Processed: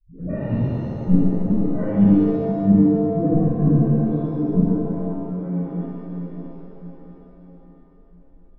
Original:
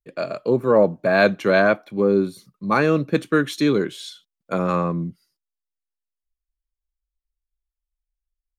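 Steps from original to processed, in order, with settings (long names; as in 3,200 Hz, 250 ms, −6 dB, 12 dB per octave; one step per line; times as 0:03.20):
running median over 41 samples
treble cut that deepens with the level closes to 780 Hz, closed at −14.5 dBFS
parametric band 710 Hz −14.5 dB 0.5 octaves
harmonic and percussive parts rebalanced percussive −13 dB
spectral tilt −4.5 dB per octave
all-pass dispersion highs, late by 125 ms, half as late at 310 Hz
tape delay 655 ms, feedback 50%, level −18.5 dB, low-pass 5,400 Hz
gate with flip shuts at −10 dBFS, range −27 dB
spectral peaks only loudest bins 64
reverb with rising layers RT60 2.3 s, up +7 semitones, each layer −8 dB, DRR −7.5 dB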